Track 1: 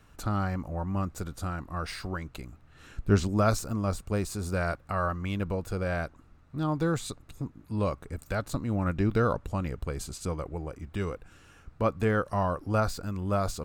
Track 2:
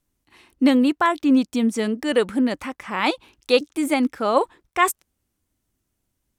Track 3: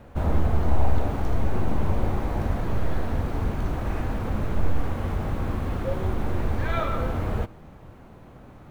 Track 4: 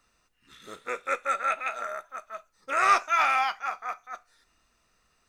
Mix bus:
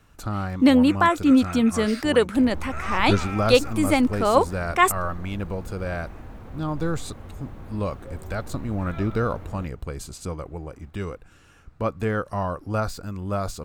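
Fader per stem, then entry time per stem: +1.0, +0.5, -13.0, -11.0 dB; 0.00, 0.00, 2.20, 0.00 s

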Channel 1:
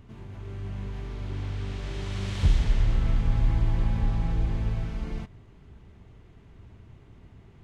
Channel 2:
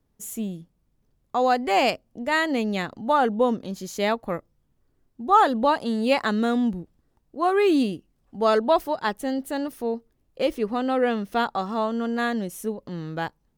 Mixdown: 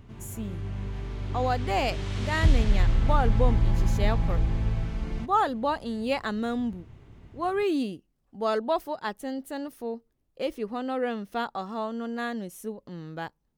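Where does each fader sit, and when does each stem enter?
+1.0, -6.5 dB; 0.00, 0.00 s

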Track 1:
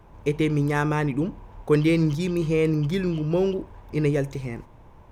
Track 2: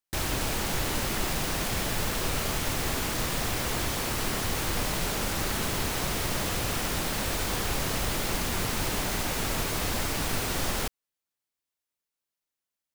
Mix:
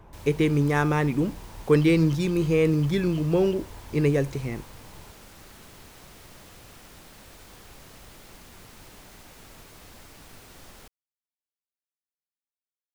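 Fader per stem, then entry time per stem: +0.5, -19.0 dB; 0.00, 0.00 s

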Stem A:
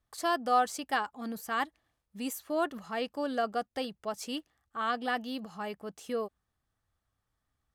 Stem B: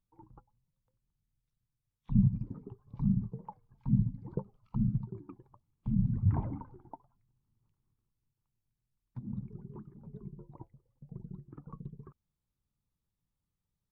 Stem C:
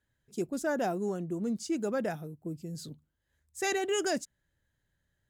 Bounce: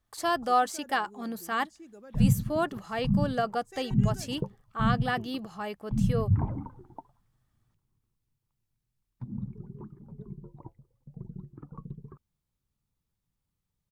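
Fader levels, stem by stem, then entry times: +2.0, +3.0, -18.0 dB; 0.00, 0.05, 0.10 s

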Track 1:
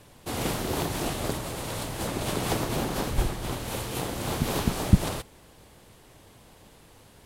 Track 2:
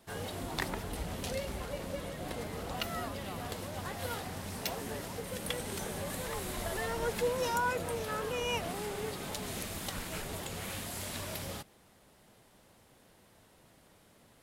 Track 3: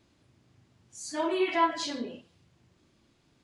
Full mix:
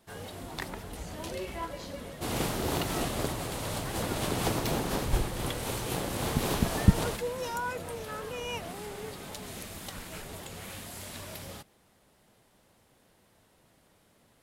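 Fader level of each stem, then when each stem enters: -2.0, -2.5, -13.5 dB; 1.95, 0.00, 0.00 s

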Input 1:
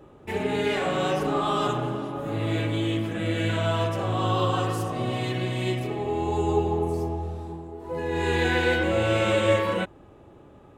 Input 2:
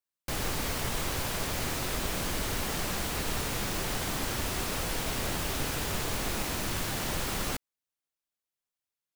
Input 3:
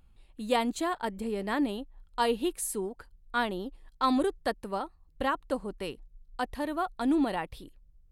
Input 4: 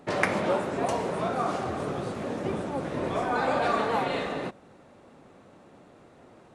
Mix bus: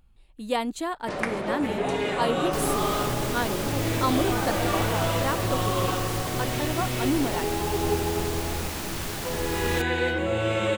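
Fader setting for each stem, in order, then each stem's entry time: -2.5, 0.0, +0.5, -3.5 dB; 1.35, 2.25, 0.00, 1.00 s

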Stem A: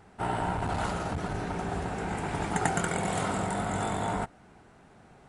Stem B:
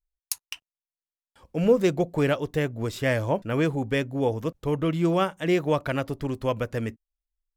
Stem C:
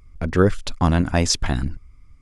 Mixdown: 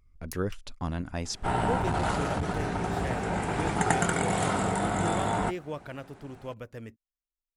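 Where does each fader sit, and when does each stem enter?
+2.5, -13.0, -14.5 dB; 1.25, 0.00, 0.00 s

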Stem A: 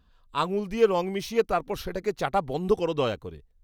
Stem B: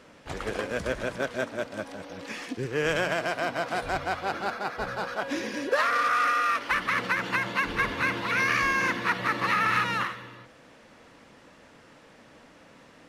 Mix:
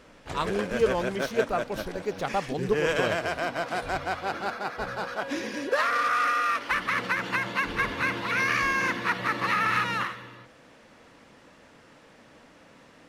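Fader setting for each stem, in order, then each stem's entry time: -3.0, -0.5 dB; 0.00, 0.00 s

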